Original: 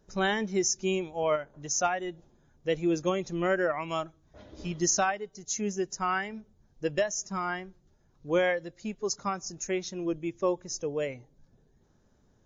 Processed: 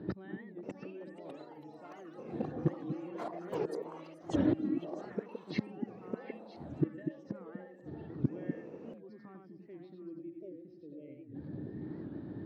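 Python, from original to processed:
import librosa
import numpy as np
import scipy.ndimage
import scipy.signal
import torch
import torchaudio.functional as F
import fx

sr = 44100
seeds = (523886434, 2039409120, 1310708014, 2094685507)

p1 = scipy.signal.sosfilt(scipy.signal.ellip(4, 1.0, 40, 4400.0, 'lowpass', fs=sr, output='sos'), x)
p2 = fx.small_body(p1, sr, hz=(310.0, 1800.0), ring_ms=65, db=16)
p3 = fx.over_compress(p2, sr, threshold_db=-35.0, ratio=-1.0)
p4 = p2 + F.gain(torch.from_numpy(p3), -2.5).numpy()
p5 = fx.tilt_eq(p4, sr, slope=-3.5)
p6 = p5 + 10.0 ** (-4.0 / 20.0) * np.pad(p5, (int(93 * sr / 1000.0), 0))[:len(p5)]
p7 = fx.gate_flip(p6, sr, shuts_db=-20.0, range_db=-34)
p8 = scipy.signal.sosfilt(scipy.signal.butter(4, 110.0, 'highpass', fs=sr, output='sos'), p7)
p9 = fx.echo_stepped(p8, sr, ms=243, hz=240.0, octaves=1.4, feedback_pct=70, wet_db=-3.5)
p10 = fx.echo_pitch(p9, sr, ms=630, semitones=7, count=3, db_per_echo=-6.0)
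p11 = fx.spec_repair(p10, sr, seeds[0], start_s=10.37, length_s=0.96, low_hz=710.0, high_hz=2000.0, source='before')
p12 = fx.record_warp(p11, sr, rpm=78.0, depth_cents=160.0)
y = F.gain(torch.from_numpy(p12), 3.0).numpy()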